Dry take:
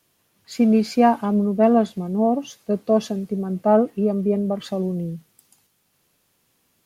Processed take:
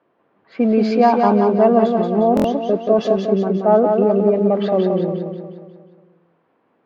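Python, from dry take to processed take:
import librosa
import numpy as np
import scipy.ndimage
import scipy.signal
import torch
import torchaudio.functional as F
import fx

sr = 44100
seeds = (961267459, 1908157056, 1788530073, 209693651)

p1 = scipy.signal.sosfilt(scipy.signal.butter(2, 370.0, 'highpass', fs=sr, output='sos'), x)
p2 = fx.env_lowpass(p1, sr, base_hz=1300.0, full_db=-19.5)
p3 = fx.tilt_eq(p2, sr, slope=-1.5)
p4 = fx.over_compress(p3, sr, threshold_db=-24.0, ratio=-0.5)
p5 = p3 + (p4 * librosa.db_to_amplitude(-2.0))
p6 = fx.air_absorb(p5, sr, metres=190.0)
p7 = p6 + fx.echo_feedback(p6, sr, ms=179, feedback_pct=51, wet_db=-4.5, dry=0)
p8 = fx.buffer_glitch(p7, sr, at_s=(2.35,), block=1024, repeats=3)
y = p8 * librosa.db_to_amplitude(3.0)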